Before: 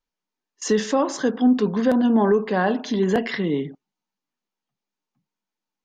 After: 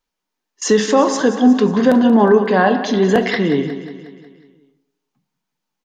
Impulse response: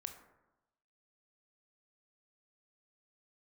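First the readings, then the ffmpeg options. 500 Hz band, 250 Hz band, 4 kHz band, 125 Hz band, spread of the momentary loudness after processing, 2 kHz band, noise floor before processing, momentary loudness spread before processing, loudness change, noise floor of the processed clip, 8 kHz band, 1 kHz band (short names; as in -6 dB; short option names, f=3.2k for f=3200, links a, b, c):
+7.0 dB, +6.0 dB, +7.5 dB, +6.0 dB, 11 LU, +8.0 dB, under -85 dBFS, 7 LU, +6.5 dB, -80 dBFS, +7.5 dB, +8.0 dB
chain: -filter_complex "[0:a]aecho=1:1:181|362|543|724|905|1086:0.224|0.123|0.0677|0.0372|0.0205|0.0113,asplit=2[a][b];[1:a]atrim=start_sample=2205,lowshelf=f=160:g=-8[c];[b][c]afir=irnorm=-1:irlink=0,volume=6.5dB[d];[a][d]amix=inputs=2:normalize=0"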